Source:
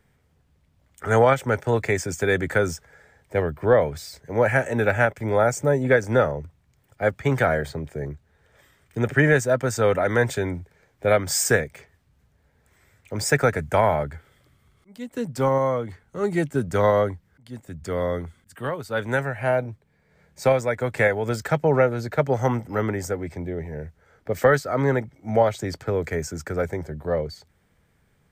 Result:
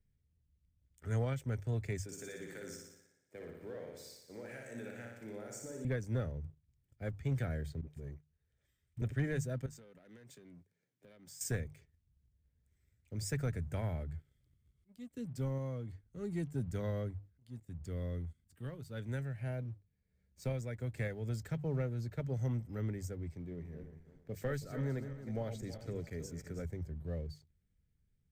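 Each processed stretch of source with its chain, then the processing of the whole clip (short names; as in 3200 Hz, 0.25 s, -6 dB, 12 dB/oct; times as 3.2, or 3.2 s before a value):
2.03–5.85 HPF 320 Hz + compressor 3:1, threshold -26 dBFS + flutter echo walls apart 10.1 m, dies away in 1 s
7.81–9.02 low shelf 420 Hz -5.5 dB + dispersion highs, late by 60 ms, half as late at 330 Hz
9.66–11.41 HPF 160 Hz 24 dB/oct + compressor 4:1, threshold -36 dBFS + core saturation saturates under 910 Hz
23.35–26.65 regenerating reverse delay 0.162 s, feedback 57%, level -9 dB + bell 78 Hz -10.5 dB 0.93 oct
whole clip: passive tone stack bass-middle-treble 10-0-1; notches 50/100/150 Hz; sample leveller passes 1; gain +1 dB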